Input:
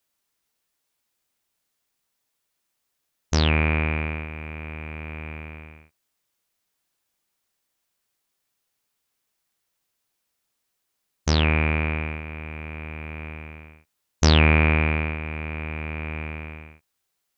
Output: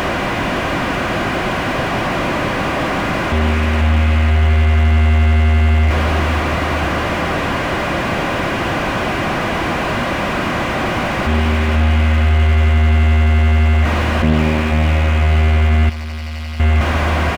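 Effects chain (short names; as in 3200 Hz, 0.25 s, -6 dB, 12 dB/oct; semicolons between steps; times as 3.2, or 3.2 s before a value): delta modulation 16 kbps, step -14 dBFS; on a send: feedback echo 0.49 s, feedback 53%, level -6 dB; 15.89–16.6 on the sum: overloaded stage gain 30 dB; notch comb 440 Hz; in parallel at +1 dB: limiter -14 dBFS, peak gain reduction 8 dB; on the sum: slew limiter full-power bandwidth 140 Hz; gain +1 dB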